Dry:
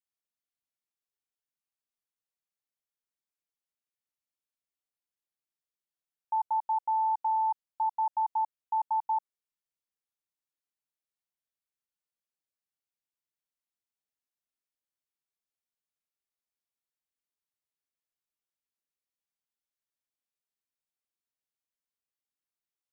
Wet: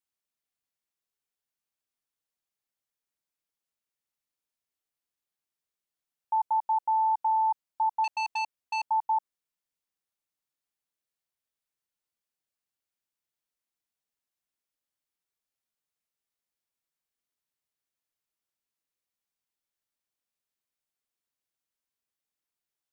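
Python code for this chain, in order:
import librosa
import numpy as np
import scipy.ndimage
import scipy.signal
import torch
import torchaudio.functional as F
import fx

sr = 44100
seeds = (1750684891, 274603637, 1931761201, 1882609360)

y = fx.transformer_sat(x, sr, knee_hz=1900.0, at=(8.04, 8.86))
y = y * 10.0 ** (2.5 / 20.0)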